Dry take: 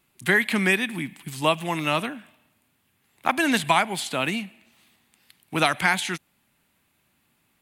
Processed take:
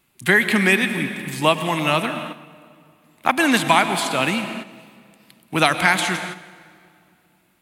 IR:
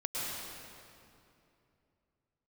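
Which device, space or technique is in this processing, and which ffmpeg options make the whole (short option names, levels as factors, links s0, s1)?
keyed gated reverb: -filter_complex "[0:a]asplit=3[s0][s1][s2];[1:a]atrim=start_sample=2205[s3];[s1][s3]afir=irnorm=-1:irlink=0[s4];[s2]apad=whole_len=336020[s5];[s4][s5]sidechaingate=range=0.355:threshold=0.00282:ratio=16:detection=peak,volume=0.299[s6];[s0][s6]amix=inputs=2:normalize=0,volume=1.33"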